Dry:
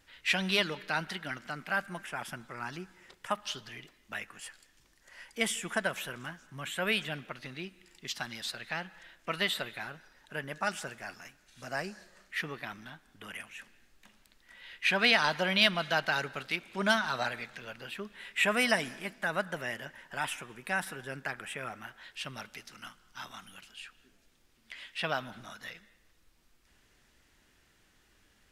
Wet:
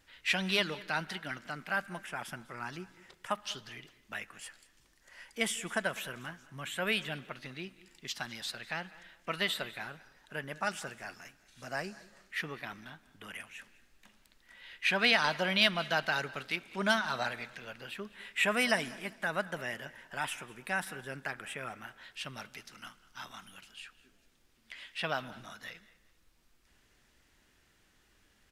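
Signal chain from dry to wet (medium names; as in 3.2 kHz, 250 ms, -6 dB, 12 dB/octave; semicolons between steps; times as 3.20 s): feedback delay 200 ms, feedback 28%, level -21 dB; trim -1.5 dB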